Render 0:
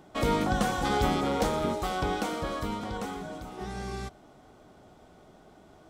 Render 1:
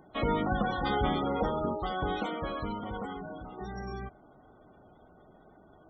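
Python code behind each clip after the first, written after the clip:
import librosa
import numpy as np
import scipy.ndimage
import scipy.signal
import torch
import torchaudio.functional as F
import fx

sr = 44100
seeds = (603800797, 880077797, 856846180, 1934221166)

y = fx.spec_gate(x, sr, threshold_db=-20, keep='strong')
y = fx.high_shelf(y, sr, hz=3600.0, db=9.0)
y = F.gain(torch.from_numpy(y), -2.5).numpy()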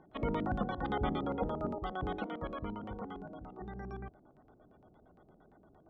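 y = fx.filter_lfo_lowpass(x, sr, shape='square', hz=8.7, low_hz=390.0, high_hz=3100.0, q=0.77)
y = F.gain(torch.from_numpy(y), -4.0).numpy()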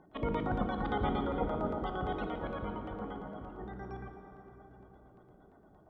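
y = fx.rev_plate(x, sr, seeds[0], rt60_s=4.1, hf_ratio=0.55, predelay_ms=0, drr_db=4.0)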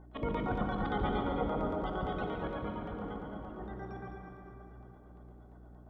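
y = fx.echo_heads(x, sr, ms=70, heads='second and third', feedback_pct=48, wet_db=-8)
y = fx.add_hum(y, sr, base_hz=60, snr_db=17)
y = F.gain(torch.from_numpy(y), -1.0).numpy()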